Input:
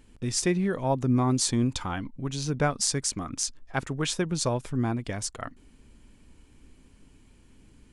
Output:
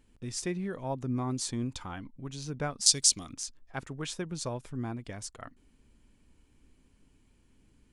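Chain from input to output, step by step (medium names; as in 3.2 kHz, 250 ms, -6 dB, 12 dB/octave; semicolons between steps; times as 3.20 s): 2.86–3.33 s: resonant high shelf 2.4 kHz +13.5 dB, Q 1.5; trim -8.5 dB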